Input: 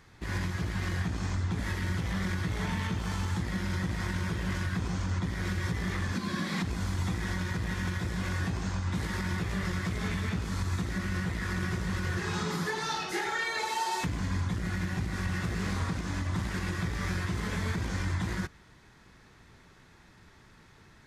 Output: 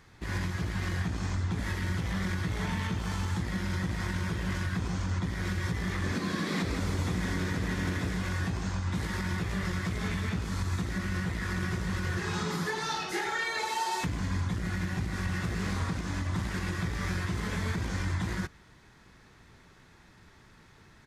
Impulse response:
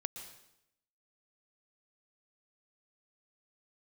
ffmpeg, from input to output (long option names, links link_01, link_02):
-filter_complex "[0:a]asplit=3[link_01][link_02][link_03];[link_01]afade=type=out:start_time=6.03:duration=0.02[link_04];[link_02]asplit=8[link_05][link_06][link_07][link_08][link_09][link_10][link_11][link_12];[link_06]adelay=162,afreqshift=95,volume=-7dB[link_13];[link_07]adelay=324,afreqshift=190,volume=-12.2dB[link_14];[link_08]adelay=486,afreqshift=285,volume=-17.4dB[link_15];[link_09]adelay=648,afreqshift=380,volume=-22.6dB[link_16];[link_10]adelay=810,afreqshift=475,volume=-27.8dB[link_17];[link_11]adelay=972,afreqshift=570,volume=-33dB[link_18];[link_12]adelay=1134,afreqshift=665,volume=-38.2dB[link_19];[link_05][link_13][link_14][link_15][link_16][link_17][link_18][link_19]amix=inputs=8:normalize=0,afade=type=in:start_time=6.03:duration=0.02,afade=type=out:start_time=8.17:duration=0.02[link_20];[link_03]afade=type=in:start_time=8.17:duration=0.02[link_21];[link_04][link_20][link_21]amix=inputs=3:normalize=0"